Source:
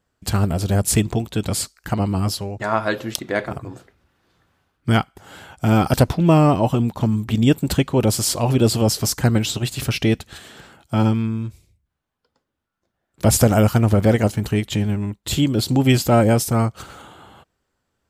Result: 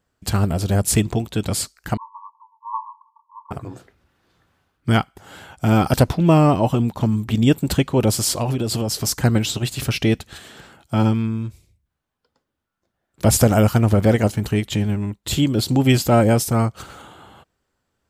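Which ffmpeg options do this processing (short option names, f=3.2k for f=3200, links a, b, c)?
-filter_complex "[0:a]asettb=1/sr,asplit=3[a][b][c];[a]atrim=end=1.974[d];[b]atrim=start=1.97:end=3.51,asetpts=PTS-STARTPTS,afade=t=in:d=0.004:c=qsin,afade=t=out:st=1.536:d=0.004:c=qsin,asuperpass=centerf=1000:order=20:qfactor=3.8[e];[c]atrim=start=3.506[f];[d][e]acrossfade=d=0.004:c1=hsin:c2=qsin[g];[g][f]acrossfade=d=0.004:c1=qsin:c2=hsin,asettb=1/sr,asplit=3[h][i][j];[h]atrim=end=8.424[k];[i]atrim=start=8.42:end=9.07,asetpts=PTS-STARTPTS,afade=t=in:d=0.004:c=qsin,afade=t=out:st=0.646:d=0.004:c=qsin,acompressor=threshold=-17dB:ratio=12:attack=3.2:release=140:knee=1:detection=peak[l];[j]atrim=start=9.066[m];[k][l]acrossfade=d=0.004:c1=hsin:c2=qsin[n];[n][m]acrossfade=d=0.004:c1=qsin:c2=hsin"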